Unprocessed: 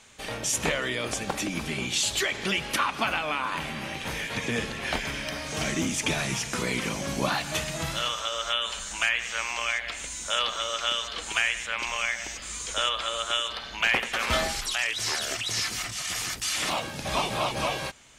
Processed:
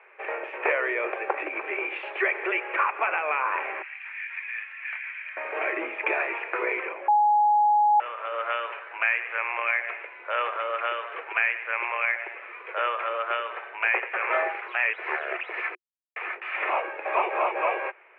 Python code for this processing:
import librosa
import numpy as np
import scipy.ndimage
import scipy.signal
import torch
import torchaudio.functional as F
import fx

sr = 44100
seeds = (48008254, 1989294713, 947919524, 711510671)

y = fx.ladder_highpass(x, sr, hz=1500.0, resonance_pct=25, at=(3.82, 5.37))
y = fx.edit(y, sr, fx.bleep(start_s=7.08, length_s=0.92, hz=836.0, db=-11.5),
    fx.silence(start_s=15.75, length_s=0.41), tone=tone)
y = scipy.signal.sosfilt(scipy.signal.cheby1(5, 1.0, [360.0, 2500.0], 'bandpass', fs=sr, output='sos'), y)
y = fx.rider(y, sr, range_db=5, speed_s=0.5)